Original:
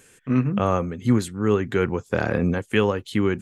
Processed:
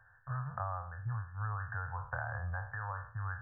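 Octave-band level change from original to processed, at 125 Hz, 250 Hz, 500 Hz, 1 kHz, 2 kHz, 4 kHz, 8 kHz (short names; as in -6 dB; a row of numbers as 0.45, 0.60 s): -12.0 dB, -34.0 dB, -28.0 dB, -10.5 dB, -10.5 dB, under -40 dB, under -40 dB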